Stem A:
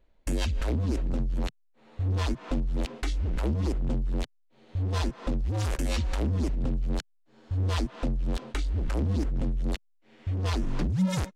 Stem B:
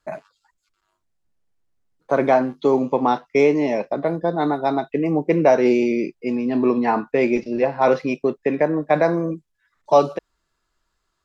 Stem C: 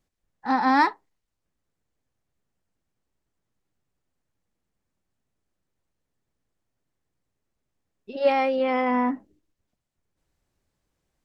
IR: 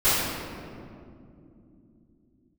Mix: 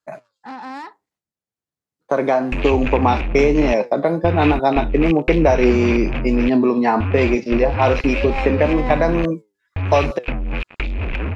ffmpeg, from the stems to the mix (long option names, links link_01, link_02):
-filter_complex "[0:a]acrossover=split=230|630[link_01][link_02][link_03];[link_01]acompressor=threshold=-32dB:ratio=4[link_04];[link_02]acompressor=threshold=-45dB:ratio=4[link_05];[link_03]acompressor=threshold=-47dB:ratio=4[link_06];[link_04][link_05][link_06]amix=inputs=3:normalize=0,acrusher=bits=5:mix=0:aa=0.5,lowpass=frequency=2500:width_type=q:width=8.2,adelay=2250,volume=2.5dB[link_07];[1:a]agate=range=-9dB:threshold=-33dB:ratio=16:detection=peak,bass=frequency=250:gain=0,treble=frequency=4000:gain=3,flanger=delay=6.1:depth=4.1:regen=80:speed=1.1:shape=triangular,volume=2.5dB[link_08];[2:a]agate=range=-33dB:threshold=-56dB:ratio=3:detection=peak,alimiter=limit=-20dB:level=0:latency=1:release=350,asoftclip=type=tanh:threshold=-26dB,volume=-2dB[link_09];[link_08][link_09]amix=inputs=2:normalize=0,highpass=91,acompressor=threshold=-21dB:ratio=3,volume=0dB[link_10];[link_07][link_10]amix=inputs=2:normalize=0,dynaudnorm=framelen=440:gausssize=9:maxgain=11.5dB"